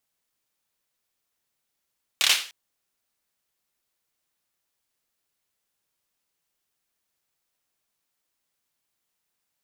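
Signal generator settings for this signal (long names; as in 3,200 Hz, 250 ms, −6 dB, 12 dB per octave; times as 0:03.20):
synth clap length 0.30 s, apart 28 ms, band 3,100 Hz, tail 0.39 s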